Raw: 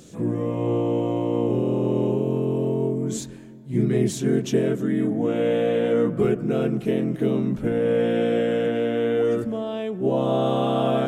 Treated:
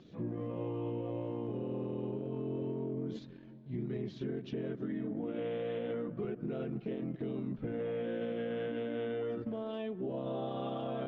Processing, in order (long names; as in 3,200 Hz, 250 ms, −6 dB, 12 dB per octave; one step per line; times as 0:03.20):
spectral magnitudes quantised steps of 15 dB
inverse Chebyshev low-pass filter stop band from 7,900 Hz, stop band 40 dB
transient designer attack −2 dB, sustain −7 dB
brickwall limiter −19 dBFS, peak gain reduction 8.5 dB
downward compressor, threshold −25 dBFS, peak gain reduction 3.5 dB
level −8 dB